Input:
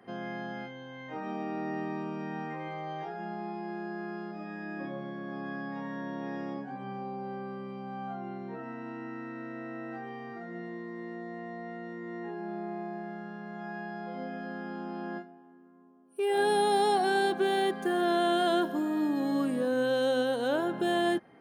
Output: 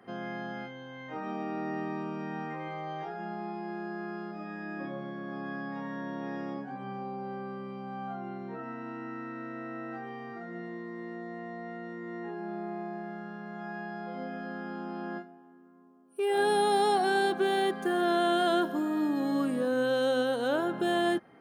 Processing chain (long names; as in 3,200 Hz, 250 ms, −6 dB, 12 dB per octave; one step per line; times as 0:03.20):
parametric band 1,300 Hz +5 dB 0.23 octaves